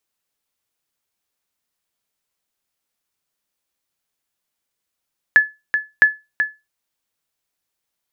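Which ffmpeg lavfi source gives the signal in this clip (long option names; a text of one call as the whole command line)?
ffmpeg -f lavfi -i "aevalsrc='0.75*(sin(2*PI*1720*mod(t,0.66))*exp(-6.91*mod(t,0.66)/0.23)+0.398*sin(2*PI*1720*max(mod(t,0.66)-0.38,0))*exp(-6.91*max(mod(t,0.66)-0.38,0)/0.23))':duration=1.32:sample_rate=44100" out.wav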